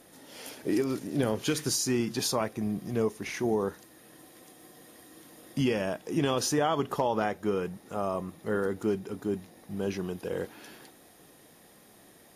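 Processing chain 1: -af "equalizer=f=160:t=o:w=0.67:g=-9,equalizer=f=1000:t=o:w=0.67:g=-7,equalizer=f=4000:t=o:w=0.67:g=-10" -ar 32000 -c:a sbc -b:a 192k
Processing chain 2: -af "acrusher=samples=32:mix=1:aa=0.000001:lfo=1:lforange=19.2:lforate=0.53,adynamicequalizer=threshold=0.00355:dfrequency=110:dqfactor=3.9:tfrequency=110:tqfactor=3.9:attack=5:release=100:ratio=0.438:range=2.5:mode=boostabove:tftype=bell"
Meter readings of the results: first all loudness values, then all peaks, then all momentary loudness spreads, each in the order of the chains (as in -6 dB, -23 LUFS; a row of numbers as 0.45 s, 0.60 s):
-32.5 LUFS, -30.5 LUFS; -17.5 dBFS, -14.5 dBFS; 12 LU, 8 LU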